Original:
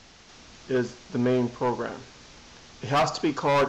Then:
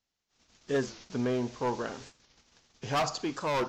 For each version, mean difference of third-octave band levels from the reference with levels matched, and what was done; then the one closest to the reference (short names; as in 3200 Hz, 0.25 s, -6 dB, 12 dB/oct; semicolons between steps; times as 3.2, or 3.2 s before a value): 5.5 dB: gate -46 dBFS, range -32 dB; high shelf 4700 Hz +8 dB; vocal rider 0.5 s; record warp 45 rpm, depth 160 cents; gain -6 dB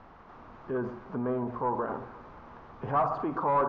8.0 dB: de-hum 57.49 Hz, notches 3; limiter -26 dBFS, peak gain reduction 9 dB; synth low-pass 1100 Hz, resonance Q 2.5; on a send: echo with dull and thin repeats by turns 0.117 s, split 810 Hz, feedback 55%, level -11.5 dB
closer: first